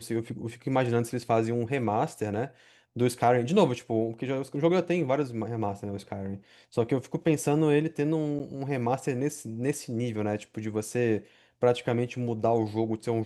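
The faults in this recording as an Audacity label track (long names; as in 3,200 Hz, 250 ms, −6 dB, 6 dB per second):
8.390000	8.400000	drop-out 8.2 ms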